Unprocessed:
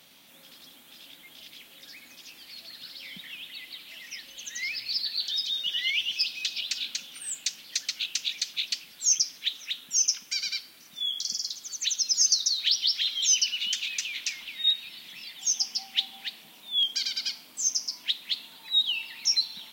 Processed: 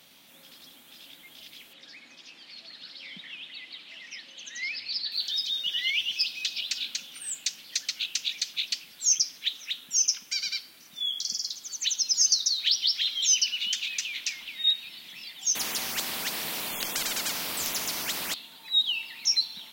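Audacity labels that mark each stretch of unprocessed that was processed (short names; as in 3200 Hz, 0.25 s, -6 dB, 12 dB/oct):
1.730000	5.120000	BPF 140–5200 Hz
11.730000	12.360000	small resonant body resonances 900/3000 Hz, height 8 dB
15.550000	18.340000	spectral compressor 10:1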